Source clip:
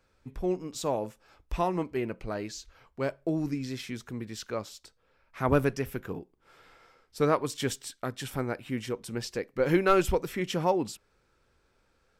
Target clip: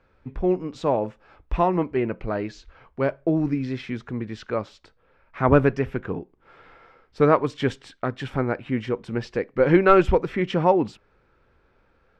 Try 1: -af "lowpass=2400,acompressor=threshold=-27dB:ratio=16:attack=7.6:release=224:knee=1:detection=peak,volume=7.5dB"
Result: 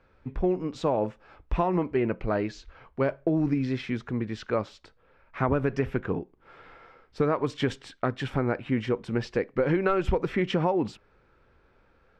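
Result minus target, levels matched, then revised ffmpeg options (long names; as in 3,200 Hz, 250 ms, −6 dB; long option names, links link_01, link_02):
downward compressor: peak gain reduction +11.5 dB
-af "lowpass=2400,volume=7.5dB"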